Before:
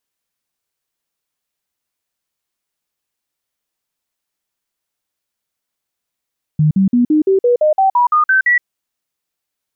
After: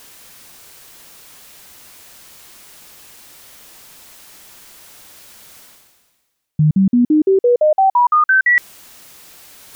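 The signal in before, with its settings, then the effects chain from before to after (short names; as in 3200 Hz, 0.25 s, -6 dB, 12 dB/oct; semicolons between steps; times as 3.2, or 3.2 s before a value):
stepped sine 153 Hz up, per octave 3, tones 12, 0.12 s, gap 0.05 s -8.5 dBFS
reverse; upward compressor, threshold -13 dBFS; reverse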